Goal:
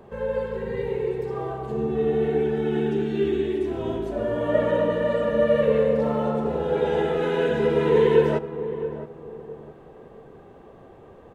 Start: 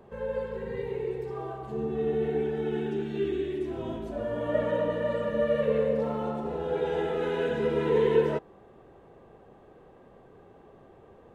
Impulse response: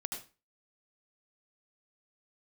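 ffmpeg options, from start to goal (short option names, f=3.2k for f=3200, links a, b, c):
-filter_complex "[0:a]asplit=2[a][b];[b]adelay=667,lowpass=f=870:p=1,volume=-10.5dB,asplit=2[c][d];[d]adelay=667,lowpass=f=870:p=1,volume=0.35,asplit=2[e][f];[f]adelay=667,lowpass=f=870:p=1,volume=0.35,asplit=2[g][h];[h]adelay=667,lowpass=f=870:p=1,volume=0.35[i];[a][c][e][g][i]amix=inputs=5:normalize=0,asplit=2[j][k];[1:a]atrim=start_sample=2205[l];[k][l]afir=irnorm=-1:irlink=0,volume=-16dB[m];[j][m]amix=inputs=2:normalize=0,volume=4.5dB"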